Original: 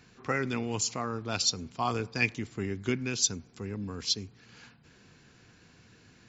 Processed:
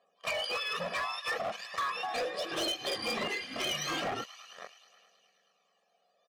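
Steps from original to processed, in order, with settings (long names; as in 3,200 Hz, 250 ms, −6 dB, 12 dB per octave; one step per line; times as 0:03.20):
frequency axis turned over on the octave scale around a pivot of 1,100 Hz
leveller curve on the samples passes 5
delay with a high-pass on its return 106 ms, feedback 76%, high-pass 1,900 Hz, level −17.5 dB
phase shifter 0.4 Hz, delay 1.7 ms, feedback 35%
band-pass filter 710–3,100 Hz
downward compressor 16 to 1, threshold −31 dBFS, peak gain reduction 19.5 dB
comb filter 1.7 ms, depth 83%
0:01.82–0:04.24: delay with pitch and tempo change per echo 208 ms, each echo −7 semitones, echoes 3, each echo −6 dB
gain into a clipping stage and back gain 29 dB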